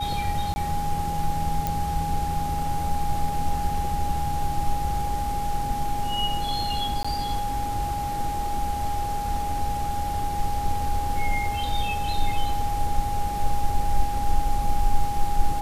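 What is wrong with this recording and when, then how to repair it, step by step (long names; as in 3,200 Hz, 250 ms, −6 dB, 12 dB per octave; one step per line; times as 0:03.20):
whistle 820 Hz −27 dBFS
0:00.54–0:00.56: drop-out 20 ms
0:01.67: click
0:07.03–0:07.04: drop-out 15 ms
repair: click removal
notch filter 820 Hz, Q 30
repair the gap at 0:00.54, 20 ms
repair the gap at 0:07.03, 15 ms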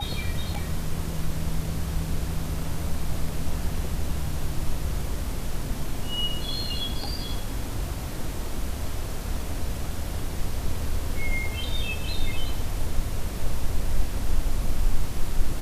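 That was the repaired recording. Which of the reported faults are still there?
none of them is left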